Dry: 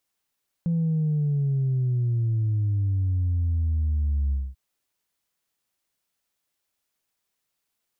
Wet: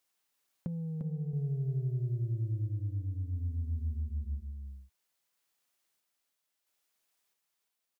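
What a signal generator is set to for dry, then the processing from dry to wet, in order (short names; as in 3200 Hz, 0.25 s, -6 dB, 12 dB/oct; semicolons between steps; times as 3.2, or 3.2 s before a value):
sub drop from 170 Hz, over 3.89 s, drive 0 dB, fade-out 0.23 s, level -21 dB
low shelf 220 Hz -9.5 dB; random-step tremolo 1.5 Hz; on a send: echo 0.349 s -4.5 dB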